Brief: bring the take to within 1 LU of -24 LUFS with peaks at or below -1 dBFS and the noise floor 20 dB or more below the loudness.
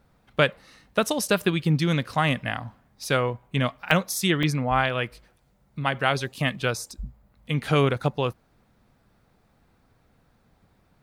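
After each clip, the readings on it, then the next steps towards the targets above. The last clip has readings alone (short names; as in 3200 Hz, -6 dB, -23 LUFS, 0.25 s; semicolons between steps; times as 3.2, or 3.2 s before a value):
dropouts 3; longest dropout 1.9 ms; loudness -25.0 LUFS; peak -4.0 dBFS; loudness target -24.0 LUFS
-> interpolate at 3.91/4.43/6.62, 1.9 ms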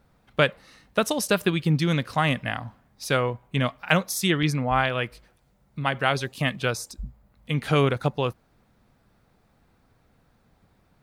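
dropouts 0; loudness -25.0 LUFS; peak -4.0 dBFS; loudness target -24.0 LUFS
-> gain +1 dB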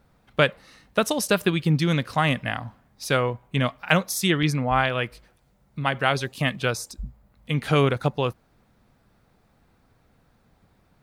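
loudness -24.0 LUFS; peak -3.0 dBFS; noise floor -63 dBFS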